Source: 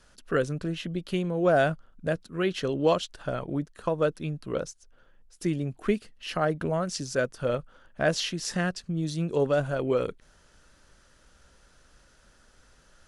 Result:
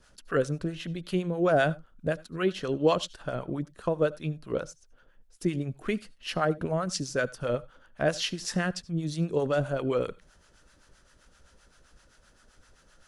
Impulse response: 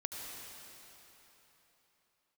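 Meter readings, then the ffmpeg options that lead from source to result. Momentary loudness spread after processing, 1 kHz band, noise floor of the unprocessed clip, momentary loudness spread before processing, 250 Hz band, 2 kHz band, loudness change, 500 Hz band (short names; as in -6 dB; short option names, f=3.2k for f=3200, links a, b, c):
9 LU, -1.0 dB, -60 dBFS, 8 LU, -1.0 dB, -1.0 dB, -1.0 dB, -1.5 dB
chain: -filter_complex "[0:a]acrossover=split=720[a][b];[a]aeval=exprs='val(0)*(1-0.7/2+0.7/2*cos(2*PI*7.7*n/s))':c=same[c];[b]aeval=exprs='val(0)*(1-0.7/2-0.7/2*cos(2*PI*7.7*n/s))':c=same[d];[c][d]amix=inputs=2:normalize=0,asplit=2[e][f];[1:a]atrim=start_sample=2205,atrim=end_sample=4410[g];[f][g]afir=irnorm=-1:irlink=0,volume=-7.5dB[h];[e][h]amix=inputs=2:normalize=0"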